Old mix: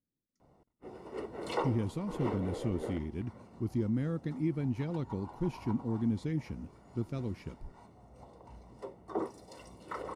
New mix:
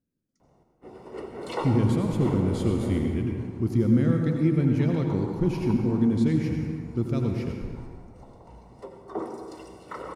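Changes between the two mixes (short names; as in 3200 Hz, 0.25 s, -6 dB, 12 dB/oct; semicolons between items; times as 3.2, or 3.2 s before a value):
speech +5.5 dB; reverb: on, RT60 1.9 s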